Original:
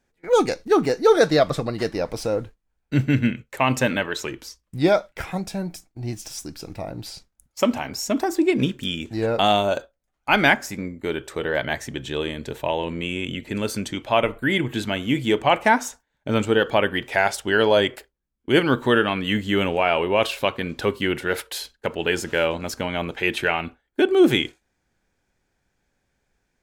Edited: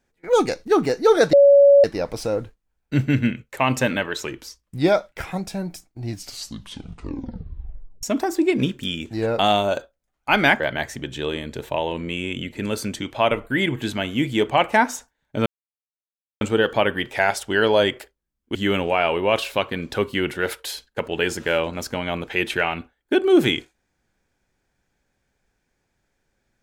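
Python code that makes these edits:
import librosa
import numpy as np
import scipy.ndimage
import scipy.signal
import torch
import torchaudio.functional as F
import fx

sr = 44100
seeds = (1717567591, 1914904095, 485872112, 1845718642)

y = fx.edit(x, sr, fx.bleep(start_s=1.33, length_s=0.51, hz=564.0, db=-8.0),
    fx.tape_stop(start_s=6.02, length_s=2.01),
    fx.cut(start_s=10.6, length_s=0.92),
    fx.insert_silence(at_s=16.38, length_s=0.95),
    fx.cut(start_s=18.52, length_s=0.9), tone=tone)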